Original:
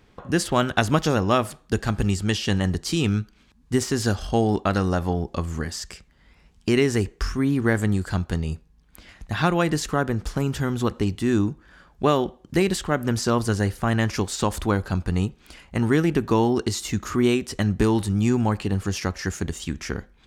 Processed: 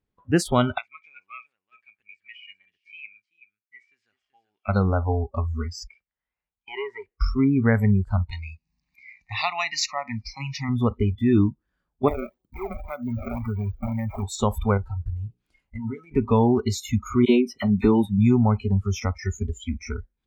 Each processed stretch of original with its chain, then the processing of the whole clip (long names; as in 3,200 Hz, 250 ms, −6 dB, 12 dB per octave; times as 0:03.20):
0:00.78–0:04.69: resonant band-pass 2,300 Hz, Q 5.5 + single-tap delay 382 ms −9.5 dB
0:05.87–0:07.20: gain into a clipping stage and back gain 16.5 dB + three-way crossover with the lows and the highs turned down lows −17 dB, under 550 Hz, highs −21 dB, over 3,600 Hz
0:08.31–0:10.69: meter weighting curve D + upward compression, threshold −34 dBFS + phaser with its sweep stopped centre 2,200 Hz, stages 8
0:12.08–0:14.23: sample-and-hold swept by an LFO 27×, swing 160% 1.9 Hz + high-shelf EQ 4,400 Hz −4 dB + downward compressor 3 to 1, threshold −25 dBFS
0:14.77–0:16.11: downward compressor 12 to 1, threshold −24 dBFS + mains-hum notches 60/120/180/240/300/360/420 Hz
0:17.25–0:18.19: low shelf with overshoot 140 Hz −6 dB, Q 1.5 + all-pass dispersion lows, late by 40 ms, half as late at 1,400 Hz
whole clip: noise reduction from a noise print of the clip's start 28 dB; low-shelf EQ 480 Hz +6 dB; level −1.5 dB